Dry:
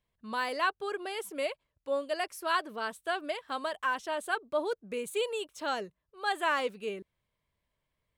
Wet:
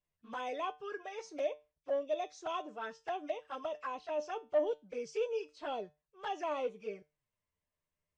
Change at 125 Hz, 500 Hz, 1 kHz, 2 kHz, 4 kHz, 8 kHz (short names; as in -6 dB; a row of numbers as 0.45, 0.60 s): n/a, -2.0 dB, -7.0 dB, -14.0 dB, -12.0 dB, under -10 dB